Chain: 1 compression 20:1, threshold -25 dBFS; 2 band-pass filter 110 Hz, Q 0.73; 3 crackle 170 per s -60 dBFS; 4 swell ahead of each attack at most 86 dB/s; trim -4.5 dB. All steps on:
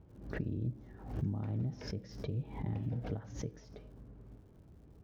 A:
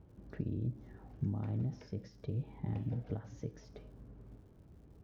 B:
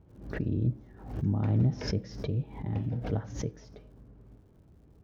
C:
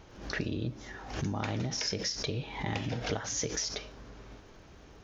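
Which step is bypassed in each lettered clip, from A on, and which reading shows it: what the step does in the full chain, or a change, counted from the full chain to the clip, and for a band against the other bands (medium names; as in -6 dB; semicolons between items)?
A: 4, 1 kHz band -2.5 dB; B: 1, mean gain reduction 3.5 dB; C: 2, 4 kHz band +13.0 dB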